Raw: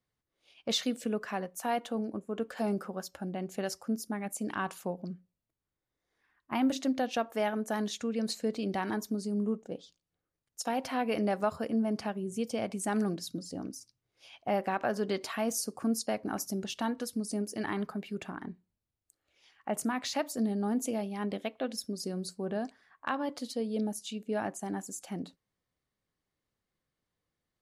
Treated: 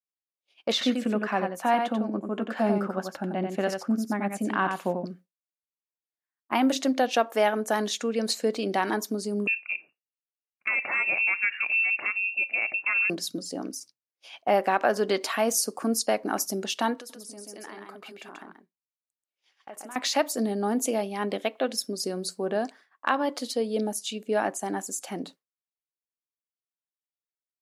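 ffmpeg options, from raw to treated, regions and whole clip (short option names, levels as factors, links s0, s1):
-filter_complex "[0:a]asettb=1/sr,asplit=3[s0][s1][s2];[s0]atrim=end=0.724[s3];[s1]atrim=start=0.72:end=5.06,asetpts=PTS-STARTPTS,afade=t=in:d=0.004:c=qsin,afade=t=out:st=4.336:d=0.004:c=qsin,bass=f=250:g=7,treble=f=4000:g=-12,bandreject=f=450:w=5.9,aecho=1:1:90:0.531,atrim=end_sample=191394[s4];[s2]atrim=start=5.056[s5];[s3][s4]acrossfade=d=0.004:c1=hsin:c2=qsin[s6];[s6][s5]acrossfade=d=0.004:c1=qsin:c2=hsin,asettb=1/sr,asplit=3[s7][s8][s9];[s7]atrim=end=9.474[s10];[s8]atrim=start=9.47:end=13.1,asetpts=PTS-STARTPTS,afade=t=in:d=0.004:c=qsin,afade=t=out:st=3.626:d=0.004:c=qsin,lowpass=f=2500:t=q:w=0.5098,lowpass=f=2500:t=q:w=0.6013,lowpass=f=2500:t=q:w=0.9,lowpass=f=2500:t=q:w=2.563,afreqshift=-2900,lowshelf=f=430:g=9,acompressor=threshold=0.0224:ratio=2:attack=3.2:release=140:knee=1:detection=peak[s11];[s9]atrim=start=13.096[s12];[s10][s11]acrossfade=d=0.004:c1=hsin:c2=qsin[s13];[s13][s12]acrossfade=d=0.004:c1=qsin:c2=hsin,asettb=1/sr,asplit=3[s14][s15][s16];[s14]atrim=end=16.964[s17];[s15]atrim=start=16.96:end=19.96,asetpts=PTS-STARTPTS,afade=t=in:d=0.004:c=qsin,afade=t=out:st=2.996:d=0.004:c=qsin,lowshelf=f=180:g=-9.5,acompressor=threshold=0.00398:ratio=5:attack=3.2:release=140:knee=1:detection=peak,aecho=1:1:135:0.668,atrim=end_sample=132300[s18];[s16]atrim=start=19.956[s19];[s17][s18]acrossfade=d=0.004:c1=hsin:c2=qsin[s20];[s20][s19]acrossfade=d=0.004:c1=qsin:c2=hsin,highpass=300,agate=range=0.0224:threshold=0.00251:ratio=3:detection=peak,volume=2.66"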